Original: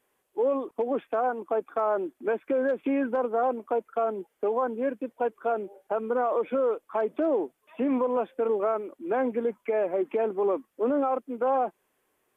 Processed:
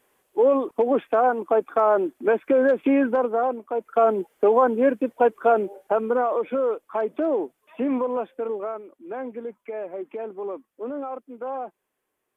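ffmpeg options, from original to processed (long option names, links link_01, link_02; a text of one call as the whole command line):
ffmpeg -i in.wav -af "volume=18dB,afade=type=out:start_time=2.95:duration=0.76:silence=0.354813,afade=type=in:start_time=3.71:duration=0.33:silence=0.281838,afade=type=out:start_time=5.64:duration=0.7:silence=0.446684,afade=type=out:start_time=7.87:duration=0.96:silence=0.398107" out.wav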